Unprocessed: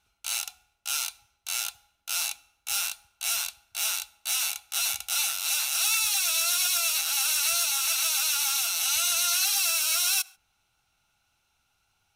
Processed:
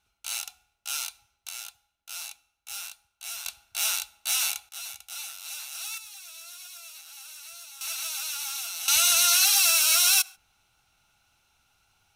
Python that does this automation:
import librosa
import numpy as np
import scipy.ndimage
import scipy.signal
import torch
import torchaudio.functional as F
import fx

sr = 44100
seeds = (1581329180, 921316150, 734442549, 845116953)

y = fx.gain(x, sr, db=fx.steps((0.0, -2.5), (1.49, -9.0), (3.46, 1.5), (4.69, -11.0), (5.98, -19.0), (7.81, -7.0), (8.88, 4.5)))